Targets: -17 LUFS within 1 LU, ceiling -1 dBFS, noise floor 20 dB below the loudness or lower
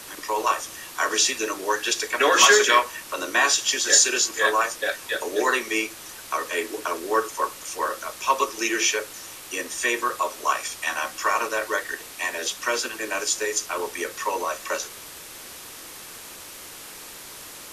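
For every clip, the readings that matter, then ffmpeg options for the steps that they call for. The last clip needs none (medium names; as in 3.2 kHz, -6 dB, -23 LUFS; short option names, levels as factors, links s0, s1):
noise floor -41 dBFS; noise floor target -43 dBFS; loudness -23.0 LUFS; peak level -3.0 dBFS; loudness target -17.0 LUFS
-> -af "afftdn=nr=6:nf=-41"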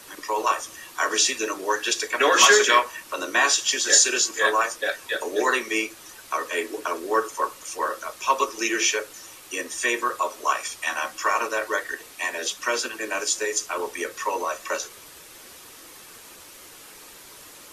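noise floor -46 dBFS; loudness -23.0 LUFS; peak level -3.0 dBFS; loudness target -17.0 LUFS
-> -af "volume=2,alimiter=limit=0.891:level=0:latency=1"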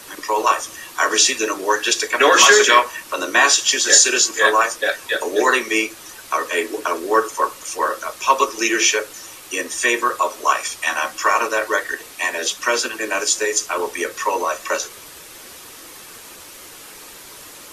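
loudness -17.5 LUFS; peak level -1.0 dBFS; noise floor -40 dBFS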